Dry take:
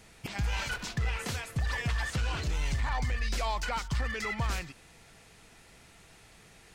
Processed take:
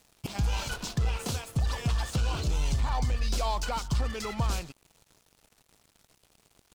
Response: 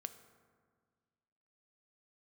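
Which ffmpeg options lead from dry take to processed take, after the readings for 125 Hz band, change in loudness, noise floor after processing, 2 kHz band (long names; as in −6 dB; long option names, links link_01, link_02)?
+3.5 dB, +2.0 dB, −69 dBFS, −5.5 dB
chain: -filter_complex "[0:a]equalizer=frequency=1900:width=1.9:gain=-13.5,asplit=2[link_01][link_02];[link_02]acompressor=threshold=-43dB:ratio=6,volume=-2.5dB[link_03];[link_01][link_03]amix=inputs=2:normalize=0,aeval=exprs='sgn(val(0))*max(abs(val(0))-0.00376,0)':channel_layout=same,volume=3dB"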